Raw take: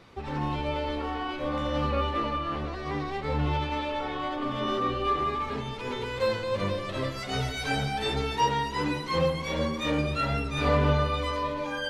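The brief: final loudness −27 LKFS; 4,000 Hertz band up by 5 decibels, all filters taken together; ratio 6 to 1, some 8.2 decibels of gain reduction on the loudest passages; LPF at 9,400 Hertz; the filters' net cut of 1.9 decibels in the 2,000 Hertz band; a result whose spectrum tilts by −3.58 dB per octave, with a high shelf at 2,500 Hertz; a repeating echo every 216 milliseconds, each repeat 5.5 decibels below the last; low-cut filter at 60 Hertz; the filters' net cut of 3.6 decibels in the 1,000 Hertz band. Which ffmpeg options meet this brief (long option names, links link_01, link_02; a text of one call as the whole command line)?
ffmpeg -i in.wav -af "highpass=60,lowpass=9400,equalizer=frequency=1000:width_type=o:gain=-4,equalizer=frequency=2000:width_type=o:gain=-5,highshelf=frequency=2500:gain=4.5,equalizer=frequency=4000:width_type=o:gain=4.5,acompressor=threshold=-29dB:ratio=6,aecho=1:1:216|432|648|864|1080|1296|1512:0.531|0.281|0.149|0.079|0.0419|0.0222|0.0118,volume=4.5dB" out.wav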